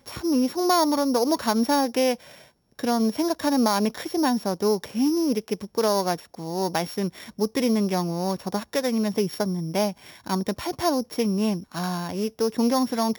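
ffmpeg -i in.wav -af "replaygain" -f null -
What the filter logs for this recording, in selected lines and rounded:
track_gain = +5.2 dB
track_peak = 0.219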